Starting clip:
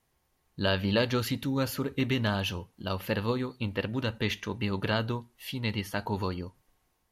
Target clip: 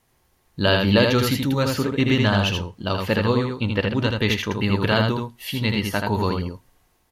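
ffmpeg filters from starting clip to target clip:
-filter_complex "[0:a]asettb=1/sr,asplit=3[s0][s1][s2];[s0]atrim=end=1.624[s3];[s1]atrim=start=1.62:end=4.19,asetpts=PTS-STARTPTS,afade=t=in:d=0.004:c=qsin,afade=t=out:st=2.566:d=0.004:c=qsin,equalizer=f=12000:t=o:w=0.29:g=-14[s4];[s2]atrim=start=4.186[s5];[s3][s4]acrossfade=d=0.004:c1=hsin:c2=qsin[s6];[s6][s5]acrossfade=d=0.004:c1=qsin:c2=hsin,aecho=1:1:80:0.631,volume=2.51"

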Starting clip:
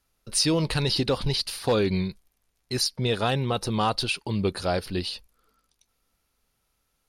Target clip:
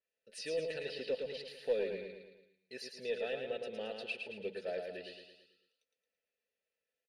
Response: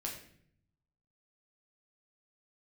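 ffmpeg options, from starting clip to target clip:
-filter_complex "[0:a]asplit=3[s0][s1][s2];[s0]bandpass=f=530:t=q:w=8,volume=1[s3];[s1]bandpass=f=1840:t=q:w=8,volume=0.501[s4];[s2]bandpass=f=2480:t=q:w=8,volume=0.355[s5];[s3][s4][s5]amix=inputs=3:normalize=0,highshelf=f=5500:g=10,aecho=1:1:4.6:0.48,aeval=exprs='0.126*(cos(1*acos(clip(val(0)/0.126,-1,1)))-cos(1*PI/2))+0.00316*(cos(2*acos(clip(val(0)/0.126,-1,1)))-cos(2*PI/2))':c=same,aecho=1:1:111|222|333|444|555|666:0.562|0.281|0.141|0.0703|0.0351|0.0176,adynamicequalizer=threshold=0.00224:dfrequency=4200:dqfactor=0.7:tfrequency=4200:tqfactor=0.7:attack=5:release=100:ratio=0.375:range=2:mode=cutabove:tftype=highshelf,volume=0.596"

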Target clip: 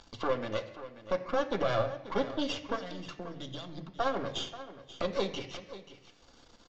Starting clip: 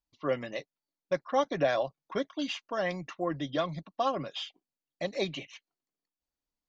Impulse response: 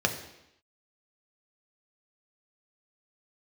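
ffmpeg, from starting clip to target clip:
-filter_complex "[0:a]acompressor=mode=upward:threshold=0.0316:ratio=2.5,alimiter=limit=0.0841:level=0:latency=1:release=138,asettb=1/sr,asplit=3[s0][s1][s2];[s0]atrim=end=2.764[s3];[s1]atrim=start=2.76:end=4,asetpts=PTS-STARTPTS,afade=t=in:d=0.004:c=qsin,afade=t=out:st=1.236:d=0.004:c=qsin,acrossover=split=170|3000[s4][s5][s6];[s5]acompressor=threshold=0.00562:ratio=10[s7];[s4][s7][s6]amix=inputs=3:normalize=0[s8];[s2]atrim=start=3.996[s9];[s3][s8]acrossfade=d=0.004:c1=hsin:c2=qsin[s10];[s10][s9]acrossfade=d=0.004:c1=qsin:c2=hsin,aeval=exprs='max(val(0),0)':c=same,aecho=1:1:534:0.188,asplit=2[s11][s12];[1:a]atrim=start_sample=2205,lowpass=5400[s13];[s12][s13]afir=irnorm=-1:irlink=0,volume=0.355[s14];[s11][s14]amix=inputs=2:normalize=0,aresample=16000,aresample=44100"

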